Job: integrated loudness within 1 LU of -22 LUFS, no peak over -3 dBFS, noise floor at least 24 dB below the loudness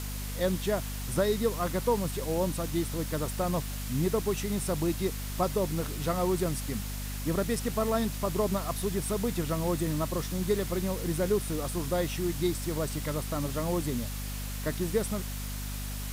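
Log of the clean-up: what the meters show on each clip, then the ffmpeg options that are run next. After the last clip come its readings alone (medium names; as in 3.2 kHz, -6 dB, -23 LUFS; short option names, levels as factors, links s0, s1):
hum 50 Hz; highest harmonic 250 Hz; hum level -34 dBFS; noise floor -36 dBFS; noise floor target -55 dBFS; loudness -31.0 LUFS; peak level -14.5 dBFS; loudness target -22.0 LUFS
-> -af "bandreject=f=50:t=h:w=4,bandreject=f=100:t=h:w=4,bandreject=f=150:t=h:w=4,bandreject=f=200:t=h:w=4,bandreject=f=250:t=h:w=4"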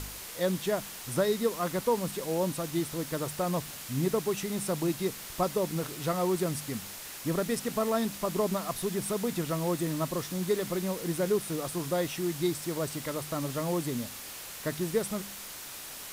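hum not found; noise floor -43 dBFS; noise floor target -56 dBFS
-> -af "afftdn=nr=13:nf=-43"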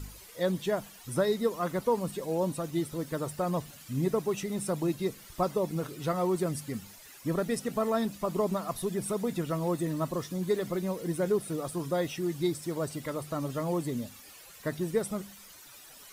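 noise floor -51 dBFS; noise floor target -56 dBFS
-> -af "afftdn=nr=6:nf=-51"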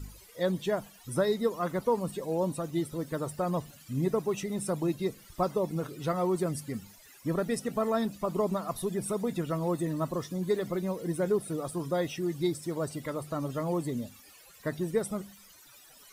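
noise floor -55 dBFS; noise floor target -56 dBFS
-> -af "afftdn=nr=6:nf=-55"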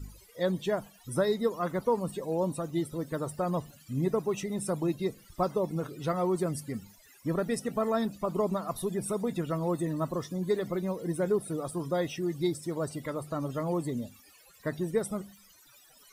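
noise floor -58 dBFS; loudness -32.0 LUFS; peak level -15.0 dBFS; loudness target -22.0 LUFS
-> -af "volume=3.16"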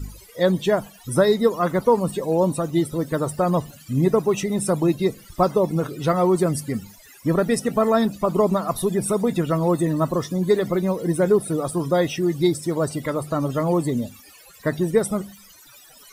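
loudness -22.0 LUFS; peak level -5.0 dBFS; noise floor -48 dBFS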